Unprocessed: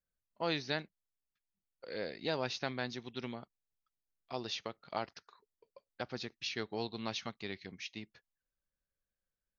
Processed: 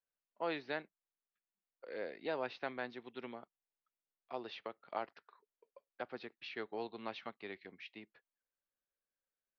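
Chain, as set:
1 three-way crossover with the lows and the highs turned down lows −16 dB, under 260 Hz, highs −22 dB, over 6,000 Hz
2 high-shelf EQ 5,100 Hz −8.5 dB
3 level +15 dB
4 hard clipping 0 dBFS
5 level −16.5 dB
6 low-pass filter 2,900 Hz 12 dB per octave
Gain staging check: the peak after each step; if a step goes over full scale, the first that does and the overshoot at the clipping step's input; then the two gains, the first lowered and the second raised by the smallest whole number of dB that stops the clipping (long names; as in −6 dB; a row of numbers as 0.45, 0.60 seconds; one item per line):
−20.5, −21.0, −6.0, −6.0, −22.5, −22.5 dBFS
no step passes full scale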